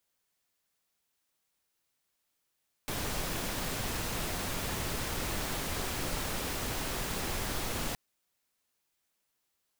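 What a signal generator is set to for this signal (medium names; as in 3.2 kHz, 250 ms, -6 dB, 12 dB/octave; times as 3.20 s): noise pink, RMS -34.5 dBFS 5.07 s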